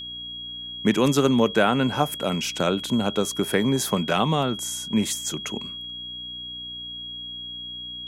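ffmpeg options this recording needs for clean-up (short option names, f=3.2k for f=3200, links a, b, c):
-af "bandreject=f=60.6:t=h:w=4,bandreject=f=121.2:t=h:w=4,bandreject=f=181.8:t=h:w=4,bandreject=f=242.4:t=h:w=4,bandreject=f=303:t=h:w=4,bandreject=f=3.3k:w=30"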